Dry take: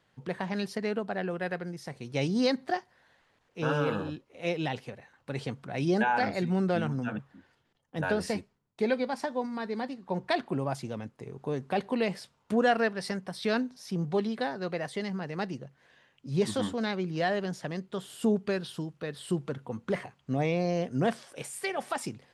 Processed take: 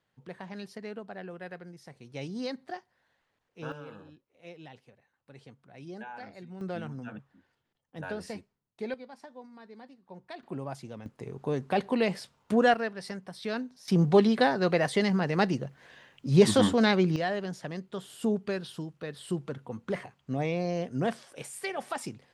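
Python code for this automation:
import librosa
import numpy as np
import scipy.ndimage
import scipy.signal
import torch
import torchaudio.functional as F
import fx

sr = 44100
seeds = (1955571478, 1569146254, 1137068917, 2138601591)

y = fx.gain(x, sr, db=fx.steps((0.0, -9.0), (3.72, -16.5), (6.61, -8.0), (8.94, -15.5), (10.43, -6.0), (11.06, 2.0), (12.74, -5.0), (13.88, 8.0), (17.16, -2.0)))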